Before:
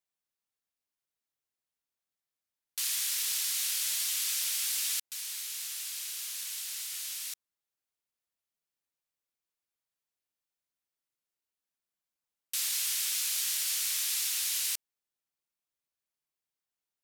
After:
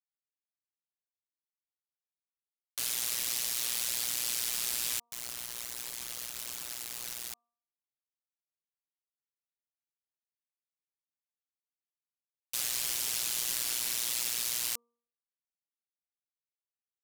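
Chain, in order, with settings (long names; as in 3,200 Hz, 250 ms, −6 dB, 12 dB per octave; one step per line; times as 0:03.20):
amplitude modulation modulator 120 Hz, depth 70%
bit reduction 6 bits
hum removal 236 Hz, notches 5
level +1.5 dB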